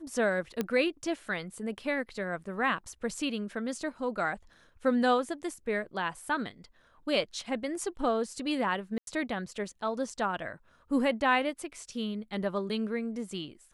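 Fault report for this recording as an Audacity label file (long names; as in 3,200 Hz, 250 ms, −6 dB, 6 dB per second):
0.610000	0.610000	click −16 dBFS
8.980000	9.070000	drop-out 92 ms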